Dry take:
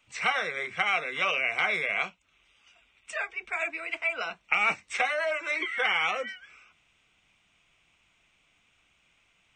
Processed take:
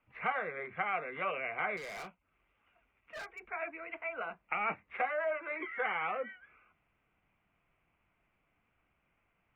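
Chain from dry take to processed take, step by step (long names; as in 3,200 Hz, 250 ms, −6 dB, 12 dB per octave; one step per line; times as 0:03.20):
Bessel low-pass filter 1,400 Hz, order 6
0:01.77–0:03.42: hard clipping −38 dBFS, distortion −17 dB
level −3 dB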